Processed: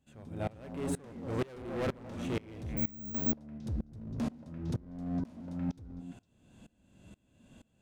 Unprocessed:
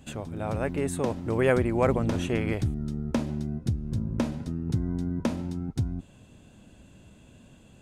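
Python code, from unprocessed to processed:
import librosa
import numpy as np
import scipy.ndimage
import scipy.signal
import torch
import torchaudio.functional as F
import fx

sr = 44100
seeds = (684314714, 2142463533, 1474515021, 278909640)

y = fx.echo_stepped(x, sr, ms=114, hz=250.0, octaves=1.4, feedback_pct=70, wet_db=-2.0)
y = np.clip(y, -10.0 ** (-27.0 / 20.0), 10.0 ** (-27.0 / 20.0))
y = fx.resample_bad(y, sr, factor=2, down='none', up='zero_stuff', at=(2.77, 3.32))
y = fx.hpss(y, sr, part='harmonic', gain_db=6)
y = fx.tremolo_decay(y, sr, direction='swelling', hz=2.1, depth_db=25)
y = y * 10.0 ** (-4.0 / 20.0)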